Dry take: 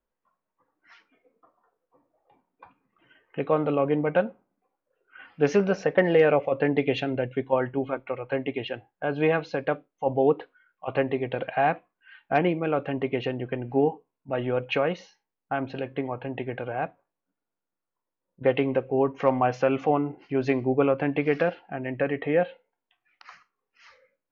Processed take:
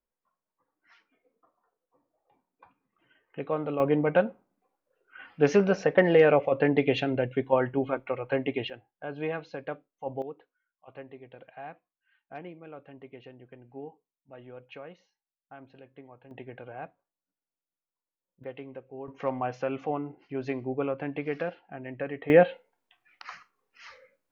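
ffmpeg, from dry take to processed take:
-af "asetnsamples=n=441:p=0,asendcmd='3.8 volume volume 0dB;8.7 volume volume -9.5dB;10.22 volume volume -19.5dB;16.31 volume volume -11dB;18.44 volume volume -18dB;19.08 volume volume -8dB;22.3 volume volume 5dB',volume=-6.5dB"

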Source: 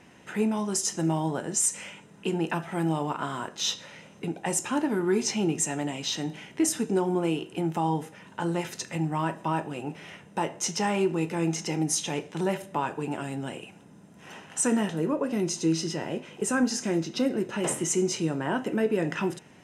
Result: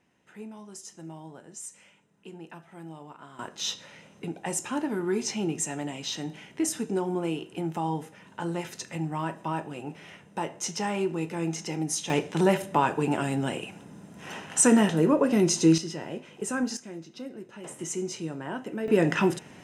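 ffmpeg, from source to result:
-af "asetnsamples=n=441:p=0,asendcmd='3.39 volume volume -3dB;12.1 volume volume 5.5dB;15.78 volume volume -4dB;16.77 volume volume -13.5dB;17.79 volume volume -6.5dB;18.88 volume volume 5dB',volume=-16dB"

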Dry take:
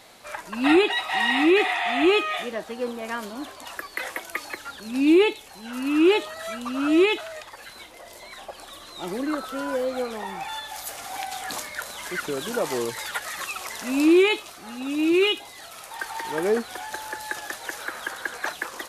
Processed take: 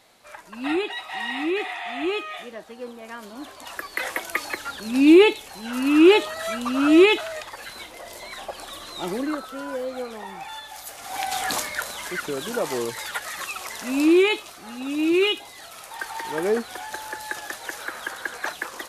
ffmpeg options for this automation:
-af "volume=15dB,afade=t=in:st=3.18:d=1.05:silence=0.266073,afade=t=out:st=8.93:d=0.54:silence=0.398107,afade=t=in:st=10.99:d=0.4:silence=0.298538,afade=t=out:st=11.39:d=0.79:silence=0.446684"

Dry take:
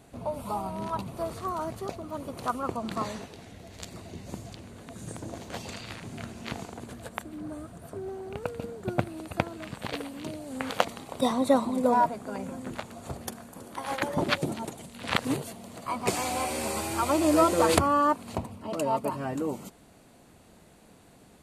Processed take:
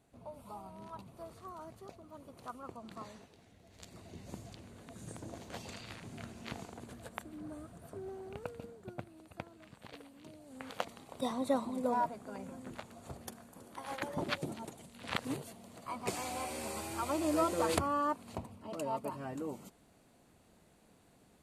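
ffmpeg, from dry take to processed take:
-af "afade=t=in:st=3.62:d=0.61:silence=0.398107,afade=t=out:st=8.26:d=0.71:silence=0.334965,afade=t=in:st=10.22:d=1.2:silence=0.421697"

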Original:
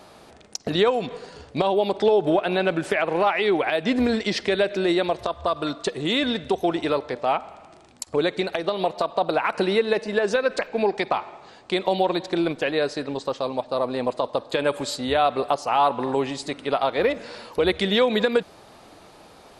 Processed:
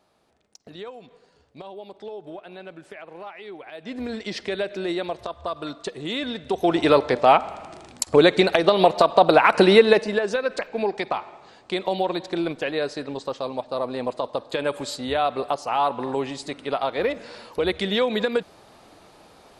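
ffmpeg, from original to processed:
-af "volume=7.5dB,afade=t=in:st=3.68:d=0.72:silence=0.237137,afade=t=in:st=6.44:d=0.54:silence=0.223872,afade=t=out:st=9.83:d=0.4:silence=0.316228"

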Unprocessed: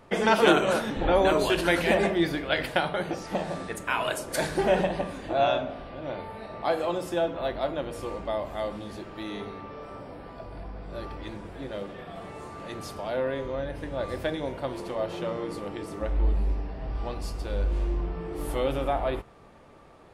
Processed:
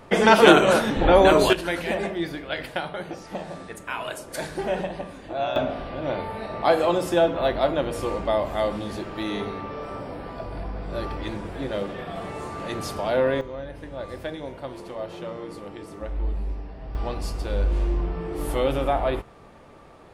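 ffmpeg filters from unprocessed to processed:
-af "asetnsamples=n=441:p=0,asendcmd='1.53 volume volume -3.5dB;5.56 volume volume 7dB;13.41 volume volume -3dB;16.95 volume volume 4dB',volume=6.5dB"

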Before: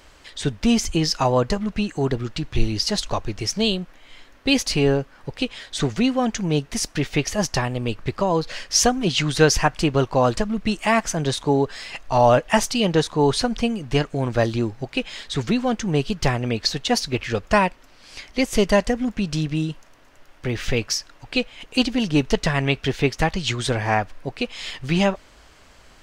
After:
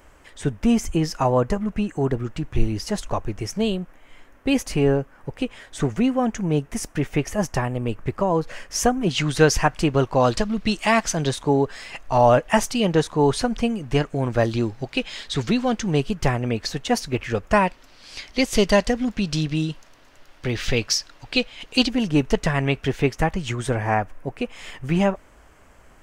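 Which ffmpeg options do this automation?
-af "asetnsamples=n=441:p=0,asendcmd='9.11 equalizer g -5;10.2 equalizer g 3.5;11.29 equalizer g -6;14.51 equalizer g 1;16 equalizer g -8;17.67 equalizer g 3.5;21.89 equalizer g -8;23.2 equalizer g -14.5',equalizer=f=4.2k:t=o:w=1.1:g=-14.5"

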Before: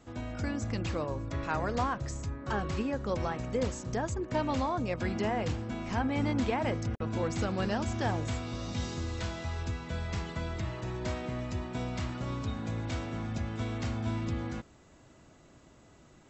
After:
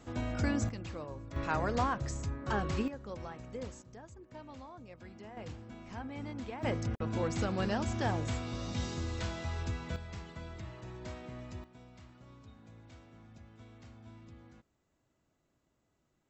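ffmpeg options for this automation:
-af "asetnsamples=n=441:p=0,asendcmd='0.69 volume volume -9dB;1.36 volume volume -0.5dB;2.88 volume volume -11dB;3.82 volume volume -18.5dB;5.37 volume volume -12dB;6.63 volume volume -1.5dB;9.96 volume volume -9.5dB;11.64 volume volume -20dB',volume=2.5dB"

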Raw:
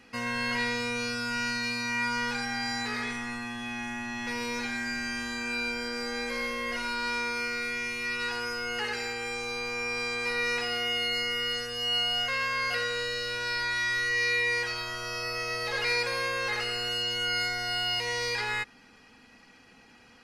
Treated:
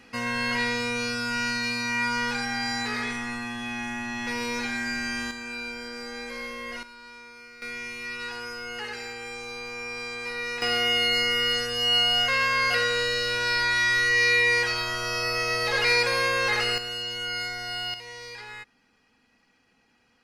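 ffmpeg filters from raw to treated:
-af "asetnsamples=n=441:p=0,asendcmd='5.31 volume volume -3.5dB;6.83 volume volume -15dB;7.62 volume volume -3dB;10.62 volume volume 6dB;16.78 volume volume -2dB;17.94 volume volume -10dB',volume=3dB"

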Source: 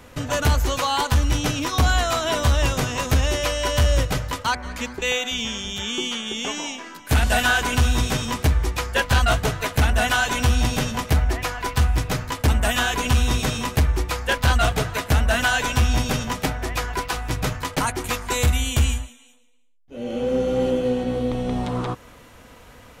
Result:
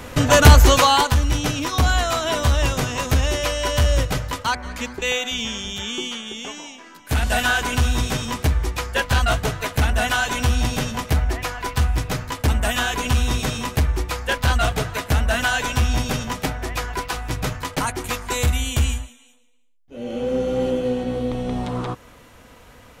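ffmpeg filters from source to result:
-af "volume=17.5dB,afade=t=out:st=0.73:d=0.42:silence=0.334965,afade=t=out:st=5.66:d=1.05:silence=0.375837,afade=t=in:st=6.71:d=0.68:silence=0.421697"

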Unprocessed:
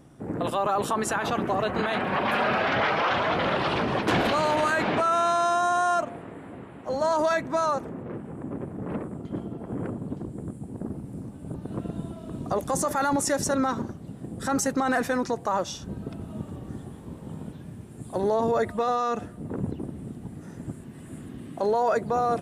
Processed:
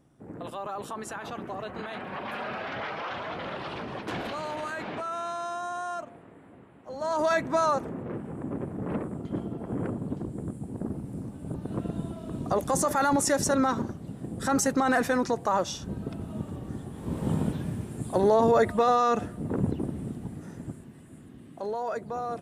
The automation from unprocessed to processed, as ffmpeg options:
-af "volume=11dB,afade=t=in:st=6.95:d=0.43:silence=0.281838,afade=t=in:st=16.93:d=0.35:silence=0.298538,afade=t=out:st=17.28:d=0.93:silence=0.398107,afade=t=out:st=19.97:d=1.12:silence=0.266073"

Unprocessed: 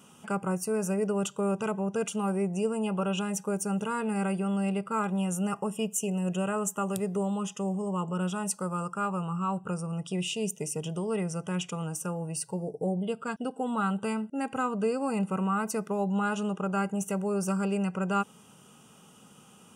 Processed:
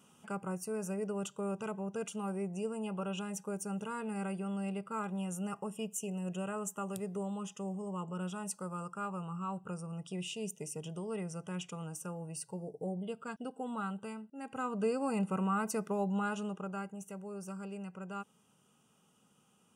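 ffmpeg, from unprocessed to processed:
-af "volume=3.5dB,afade=t=out:st=13.71:d=0.62:silence=0.421697,afade=t=in:st=14.33:d=0.54:silence=0.251189,afade=t=out:st=15.96:d=1:silence=0.298538"

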